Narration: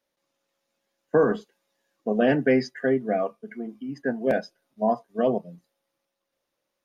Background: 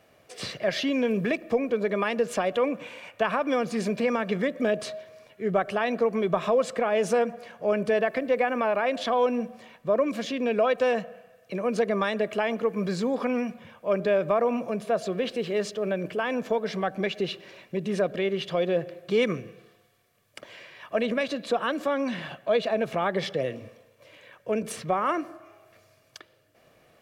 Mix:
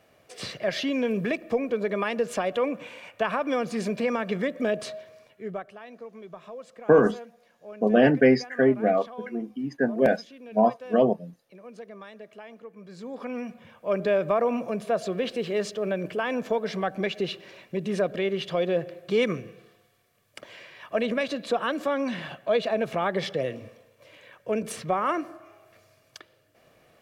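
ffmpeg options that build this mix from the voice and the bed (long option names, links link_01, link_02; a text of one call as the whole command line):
ffmpeg -i stem1.wav -i stem2.wav -filter_complex "[0:a]adelay=5750,volume=2.5dB[link_01];[1:a]volume=17dB,afade=type=out:start_time=5.07:duration=0.65:silence=0.141254,afade=type=in:start_time=12.88:duration=1.17:silence=0.125893[link_02];[link_01][link_02]amix=inputs=2:normalize=0" out.wav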